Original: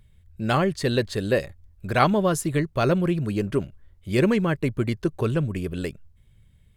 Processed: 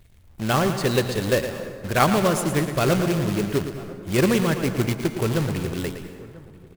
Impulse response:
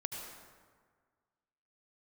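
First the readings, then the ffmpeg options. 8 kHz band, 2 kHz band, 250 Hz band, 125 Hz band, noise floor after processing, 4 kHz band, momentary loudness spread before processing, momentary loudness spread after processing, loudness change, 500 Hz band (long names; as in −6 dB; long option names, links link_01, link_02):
+6.5 dB, +2.5 dB, +1.0 dB, +1.0 dB, −50 dBFS, +4.5 dB, 12 LU, 13 LU, +1.5 dB, +1.5 dB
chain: -filter_complex "[0:a]acrusher=bits=2:mode=log:mix=0:aa=0.000001,asplit=2[link_01][link_02];[link_02]adelay=991.3,volume=-20dB,highshelf=frequency=4000:gain=-22.3[link_03];[link_01][link_03]amix=inputs=2:normalize=0,asplit=2[link_04][link_05];[1:a]atrim=start_sample=2205,adelay=113[link_06];[link_05][link_06]afir=irnorm=-1:irlink=0,volume=-7.5dB[link_07];[link_04][link_07]amix=inputs=2:normalize=0"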